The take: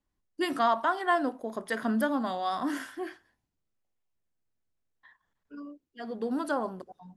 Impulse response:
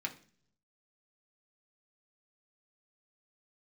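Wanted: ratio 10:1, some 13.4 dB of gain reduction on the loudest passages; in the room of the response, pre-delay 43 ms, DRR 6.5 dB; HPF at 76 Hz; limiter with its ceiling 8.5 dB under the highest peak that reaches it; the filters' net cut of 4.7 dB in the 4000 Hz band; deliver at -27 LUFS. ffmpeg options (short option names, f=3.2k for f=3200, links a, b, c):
-filter_complex "[0:a]highpass=76,equalizer=f=4k:t=o:g=-6.5,acompressor=threshold=-34dB:ratio=10,alimiter=level_in=8.5dB:limit=-24dB:level=0:latency=1,volume=-8.5dB,asplit=2[a][b];[1:a]atrim=start_sample=2205,adelay=43[c];[b][c]afir=irnorm=-1:irlink=0,volume=-8.5dB[d];[a][d]amix=inputs=2:normalize=0,volume=14.5dB"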